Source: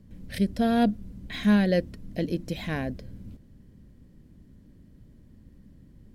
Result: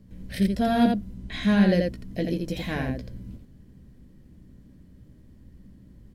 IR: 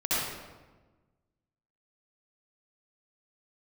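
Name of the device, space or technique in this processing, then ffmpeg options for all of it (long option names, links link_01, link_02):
slapback doubling: -filter_complex "[0:a]asettb=1/sr,asplit=3[link_01][link_02][link_03];[link_01]atrim=end=1.154[link_04];[link_02]atrim=start=1.15:end=1.69,asetpts=PTS-STARTPTS,afade=type=in:duration=0.004:curve=qsin,afade=type=out:start_time=0.536:duration=0.004:curve=qsin,lowpass=10000[link_05];[link_03]atrim=start=1.686[link_06];[link_04][link_05]acrossfade=duration=0.004:curve1=hsin:curve2=qsin[link_07];[link_07][link_06]acrossfade=duration=0.004:curve1=qsin:curve2=hsin,asplit=3[link_08][link_09][link_10];[link_09]adelay=16,volume=-6.5dB[link_11];[link_10]adelay=84,volume=-4dB[link_12];[link_08][link_11][link_12]amix=inputs=3:normalize=0"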